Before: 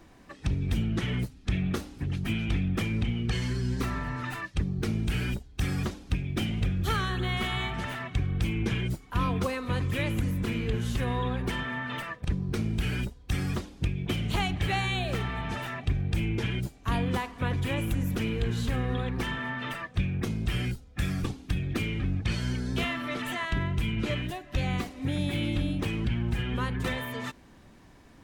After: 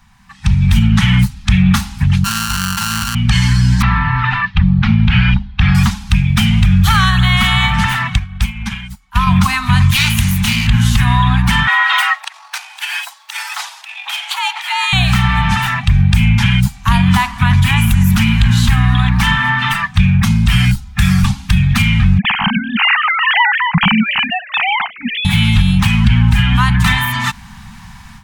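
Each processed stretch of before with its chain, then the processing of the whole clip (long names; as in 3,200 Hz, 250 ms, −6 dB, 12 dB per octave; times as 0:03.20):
0:02.24–0:03.15: samples sorted by size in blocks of 32 samples + bass and treble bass −12 dB, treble +3 dB + highs frequency-modulated by the lows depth 0.18 ms
0:03.82–0:05.75: low-pass filter 3,500 Hz 24 dB per octave + mains-hum notches 50/100/150/200/250/300/350/400/450 Hz
0:08.16–0:09.27: parametric band 130 Hz −10.5 dB 0.98 octaves + expander for the loud parts 2.5 to 1, over −39 dBFS
0:09.91–0:10.67: lower of the sound and its delayed copy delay 0.31 ms + tilt shelving filter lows −5.5 dB, about 1,400 Hz
0:11.67–0:14.93: compressor whose output falls as the input rises −33 dBFS + frequency shifter +120 Hz + linear-phase brick-wall high-pass 570 Hz
0:22.18–0:25.25: three sine waves on the formant tracks + downward compressor 2 to 1, threshold −30 dBFS
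whole clip: elliptic band-stop filter 210–840 Hz, stop band 40 dB; automatic gain control gain up to 15 dB; boost into a limiter +7.5 dB; level −1 dB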